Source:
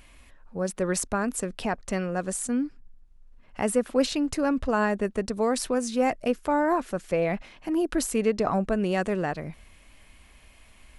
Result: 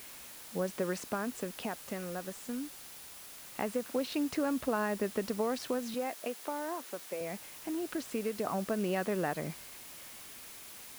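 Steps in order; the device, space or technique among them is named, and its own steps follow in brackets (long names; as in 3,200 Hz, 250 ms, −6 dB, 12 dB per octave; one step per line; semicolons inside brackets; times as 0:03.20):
medium wave at night (band-pass filter 160–4,200 Hz; downward compressor, threshold −28 dBFS, peak gain reduction 10.5 dB; amplitude tremolo 0.21 Hz, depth 56%; steady tone 10,000 Hz −58 dBFS; white noise bed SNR 13 dB)
0:05.94–0:07.21: high-pass filter 280 Hz 12 dB per octave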